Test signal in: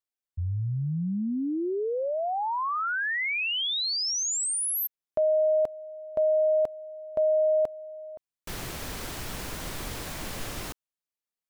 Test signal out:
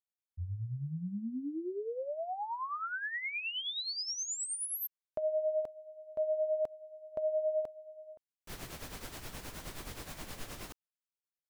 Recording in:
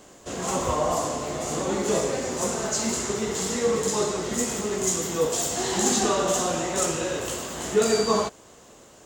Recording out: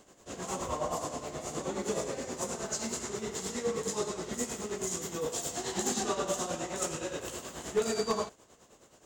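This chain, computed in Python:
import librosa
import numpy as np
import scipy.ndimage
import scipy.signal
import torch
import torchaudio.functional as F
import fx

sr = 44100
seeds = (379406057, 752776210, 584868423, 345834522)

y = np.minimum(x, 2.0 * 10.0 ** (-13.5 / 20.0) - x)
y = y * (1.0 - 0.62 / 2.0 + 0.62 / 2.0 * np.cos(2.0 * np.pi * 9.5 * (np.arange(len(y)) / sr)))
y = F.gain(torch.from_numpy(y), -6.5).numpy()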